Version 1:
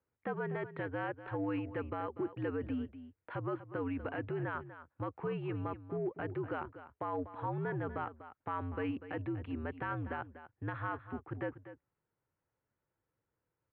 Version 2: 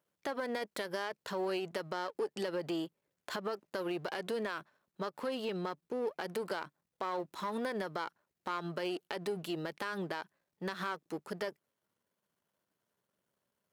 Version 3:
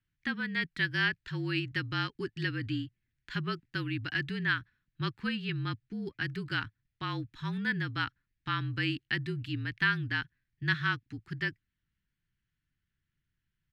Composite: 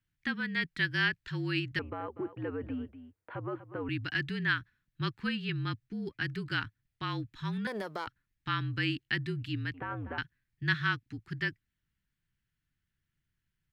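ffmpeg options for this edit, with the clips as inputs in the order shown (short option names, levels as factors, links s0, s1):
-filter_complex "[0:a]asplit=2[s0][s1];[2:a]asplit=4[s2][s3][s4][s5];[s2]atrim=end=1.792[s6];[s0]atrim=start=1.788:end=3.892[s7];[s3]atrim=start=3.888:end=7.672[s8];[1:a]atrim=start=7.668:end=8.072[s9];[s4]atrim=start=8.068:end=9.742[s10];[s1]atrim=start=9.738:end=10.182[s11];[s5]atrim=start=10.178[s12];[s6][s7]acrossfade=d=0.004:c1=hsin:c2=hsin[s13];[s13][s8]acrossfade=d=0.004:c1=hsin:c2=hsin[s14];[s14][s9]acrossfade=d=0.004:c1=hsin:c2=hsin[s15];[s15][s10]acrossfade=d=0.004:c1=hsin:c2=hsin[s16];[s16][s11]acrossfade=d=0.004:c1=hsin:c2=hsin[s17];[s17][s12]acrossfade=d=0.004:c1=hsin:c2=hsin"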